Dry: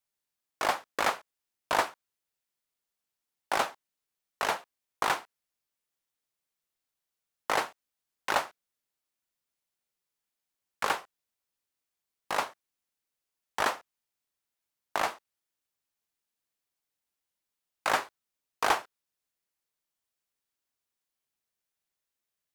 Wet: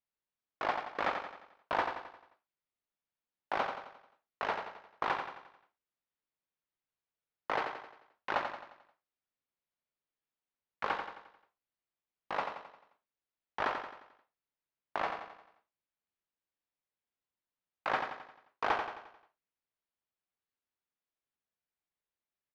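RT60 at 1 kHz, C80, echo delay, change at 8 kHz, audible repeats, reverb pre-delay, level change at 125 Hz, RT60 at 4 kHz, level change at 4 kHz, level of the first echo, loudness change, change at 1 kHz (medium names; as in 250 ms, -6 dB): no reverb, no reverb, 88 ms, under -20 dB, 5, no reverb, -3.0 dB, no reverb, -9.5 dB, -6.5 dB, -5.5 dB, -4.0 dB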